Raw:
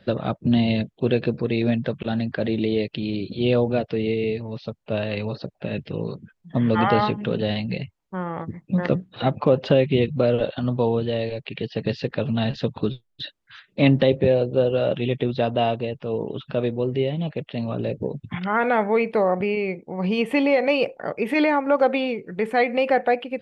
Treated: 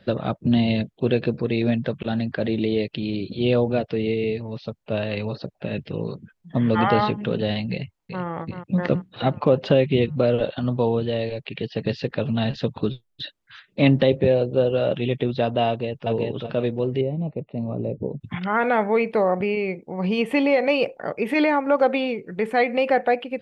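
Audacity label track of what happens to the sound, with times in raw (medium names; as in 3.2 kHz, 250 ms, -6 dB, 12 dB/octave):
7.710000	8.250000	echo throw 380 ms, feedback 55%, level -8.5 dB
15.680000	16.080000	echo throw 380 ms, feedback 25%, level -1 dB
17.010000	18.210000	boxcar filter over 27 samples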